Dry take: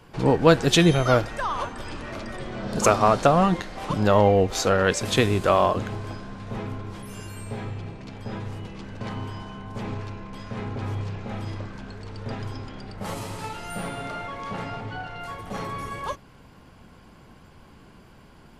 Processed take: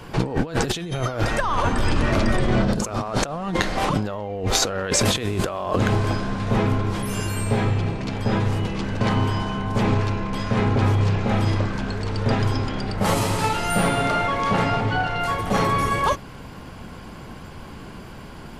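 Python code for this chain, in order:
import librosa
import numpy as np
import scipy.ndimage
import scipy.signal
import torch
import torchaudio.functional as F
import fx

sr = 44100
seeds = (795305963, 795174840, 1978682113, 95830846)

y = fx.low_shelf(x, sr, hz=220.0, db=7.5, at=(1.4, 3.02))
y = fx.over_compress(y, sr, threshold_db=-29.0, ratio=-1.0)
y = y * librosa.db_to_amplitude(7.5)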